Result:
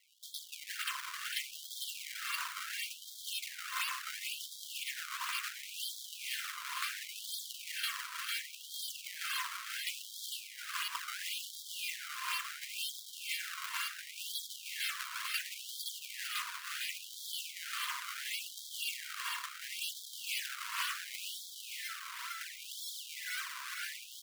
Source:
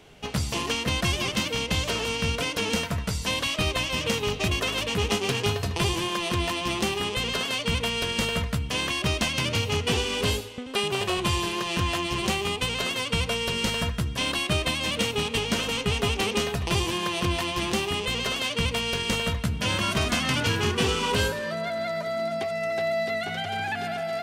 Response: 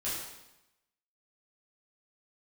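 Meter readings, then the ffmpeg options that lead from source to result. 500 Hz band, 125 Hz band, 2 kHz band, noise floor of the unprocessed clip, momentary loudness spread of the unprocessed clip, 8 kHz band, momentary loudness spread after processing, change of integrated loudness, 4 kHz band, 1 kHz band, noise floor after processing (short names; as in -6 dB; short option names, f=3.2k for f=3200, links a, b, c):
under -40 dB, under -40 dB, -11.5 dB, -35 dBFS, 4 LU, -8.0 dB, 5 LU, -13.0 dB, -12.5 dB, -14.5 dB, -50 dBFS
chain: -filter_complex "[0:a]afftfilt=real='re*pow(10,8/40*sin(2*PI*(1.2*log(max(b,1)*sr/1024/100)/log(2)-(0.61)*(pts-256)/sr)))':imag='im*pow(10,8/40*sin(2*PI*(1.2*log(max(b,1)*sr/1024/100)/log(2)-(0.61)*(pts-256)/sr)))':win_size=1024:overlap=0.75,adynamicequalizer=threshold=0.00794:dfrequency=670:dqfactor=1.2:tfrequency=670:tqfactor=1.2:attack=5:release=100:ratio=0.375:range=2:mode=cutabove:tftype=bell,acrossover=split=360|2200[a][b][c];[a]acompressor=threshold=-32dB:ratio=4[d];[b]acompressor=threshold=-31dB:ratio=4[e];[c]acompressor=threshold=-31dB:ratio=4[f];[d][e][f]amix=inputs=3:normalize=0,aexciter=amount=3.1:drive=4.9:freq=11k,acrusher=samples=29:mix=1:aa=0.000001:lfo=1:lforange=46.4:lforate=2,asplit=2[g][h];[h]aecho=0:1:452|904|1356|1808|2260|2712:0.596|0.292|0.143|0.0701|0.0343|0.0168[i];[g][i]amix=inputs=2:normalize=0,afftfilt=real='re*gte(b*sr/1024,920*pow(3200/920,0.5+0.5*sin(2*PI*0.71*pts/sr)))':imag='im*gte(b*sr/1024,920*pow(3200/920,0.5+0.5*sin(2*PI*0.71*pts/sr)))':win_size=1024:overlap=0.75,volume=-5dB"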